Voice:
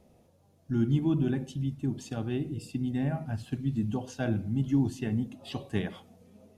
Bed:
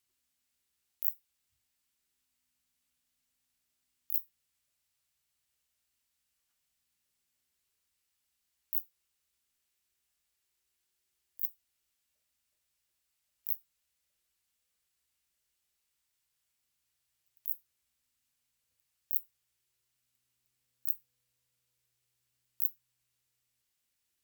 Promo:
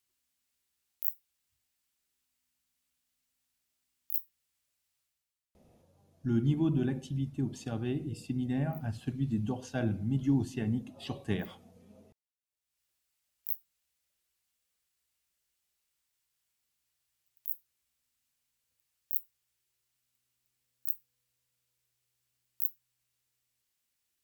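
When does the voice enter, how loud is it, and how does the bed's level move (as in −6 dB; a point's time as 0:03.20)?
5.55 s, −2.0 dB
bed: 0:05.02 −0.5 dB
0:05.68 −19.5 dB
0:12.38 −19.5 dB
0:12.82 −0.5 dB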